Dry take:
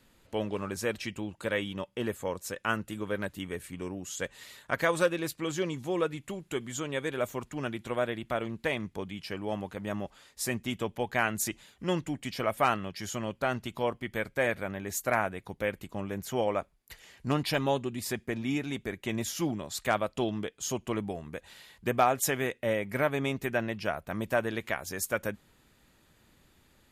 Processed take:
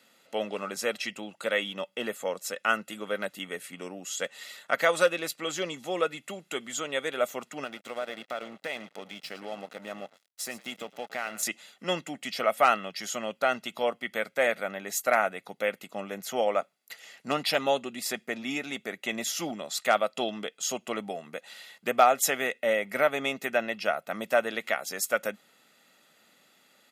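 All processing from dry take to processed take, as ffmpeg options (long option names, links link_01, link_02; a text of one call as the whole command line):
ffmpeg -i in.wav -filter_complex "[0:a]asettb=1/sr,asplit=3[link_01][link_02][link_03];[link_01]atrim=end=7.644[link_04];[link_02]atrim=start=7.64:end=11.43,asetpts=PTS-STARTPTS,afade=type=in:duration=0.004:curve=qsin,afade=type=out:start_time=3.786:duration=0.004:curve=qsin,acompressor=threshold=-34dB:ratio=2.5:attack=3.2:release=140:knee=1:detection=peak,asplit=4[link_05][link_06][link_07][link_08];[link_06]adelay=110,afreqshift=-47,volume=-14.5dB[link_09];[link_07]adelay=220,afreqshift=-94,volume=-24.7dB[link_10];[link_08]adelay=330,afreqshift=-141,volume=-34.8dB[link_11];[link_05][link_09][link_10][link_11]amix=inputs=4:normalize=0,atrim=end_sample=167139,aeval=exprs='sgn(val(0))*max(abs(val(0))-0.00398,0)':channel_layout=same[link_12];[link_03]atrim=start=11.426[link_13];[link_04][link_12]acrossfade=duration=0.004:curve1=hsin:curve2=qsin[link_14];[link_14][link_13]acrossfade=duration=0.004:curve1=qsin:curve2=hsin,highpass=frequency=220:width=0.5412,highpass=frequency=220:width=1.3066,equalizer=frequency=3200:width_type=o:width=2.3:gain=4,aecho=1:1:1.5:0.51,volume=1dB" out.wav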